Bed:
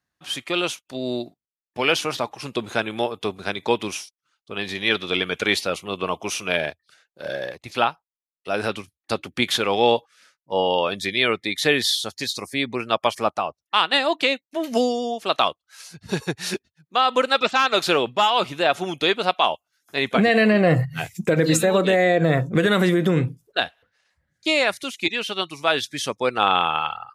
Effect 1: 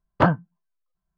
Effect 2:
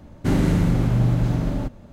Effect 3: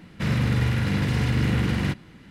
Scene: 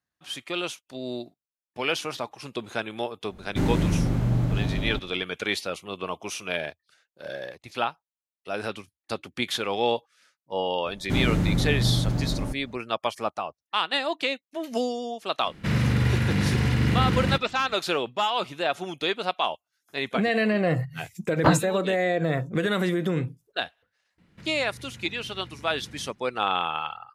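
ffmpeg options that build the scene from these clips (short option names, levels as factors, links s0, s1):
-filter_complex "[2:a]asplit=2[s0][s1];[3:a]asplit=2[s2][s3];[0:a]volume=0.473[s4];[s3]acompressor=threshold=0.0398:ratio=6:attack=3.2:release=140:knee=1:detection=peak[s5];[s0]atrim=end=1.92,asetpts=PTS-STARTPTS,volume=0.596,afade=t=in:d=0.004:c=hsin,afade=t=out:st=1.916:d=0.004:c=hsin,adelay=3310[s6];[s1]atrim=end=1.92,asetpts=PTS-STARTPTS,volume=0.596,afade=t=in:d=0.004:c=hsin,afade=t=out:st=1.916:d=0.004:c=hsin,adelay=10850[s7];[s2]atrim=end=2.3,asetpts=PTS-STARTPTS,afade=t=in:d=0.004:c=hsin,afade=t=out:st=2.296:d=0.004:c=hsin,adelay=15440[s8];[1:a]atrim=end=1.17,asetpts=PTS-STARTPTS,volume=0.794,afade=t=in:d=0.004:c=hsin,afade=t=out:st=1.166:d=0.004:c=hsin,adelay=21240[s9];[s5]atrim=end=2.3,asetpts=PTS-STARTPTS,volume=0.188,afade=t=in:d=0.004:c=hsin,afade=t=out:st=2.296:d=0.004:c=hsin,adelay=24180[s10];[s4][s6][s7][s8][s9][s10]amix=inputs=6:normalize=0"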